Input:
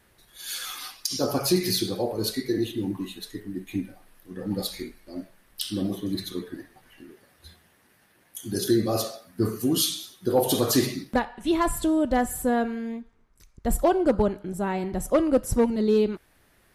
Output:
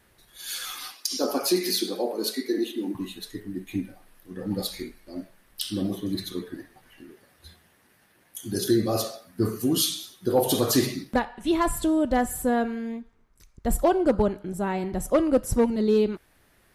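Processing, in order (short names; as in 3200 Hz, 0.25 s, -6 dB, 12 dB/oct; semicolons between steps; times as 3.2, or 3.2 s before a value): 0.92–2.95 steep high-pass 220 Hz 36 dB/oct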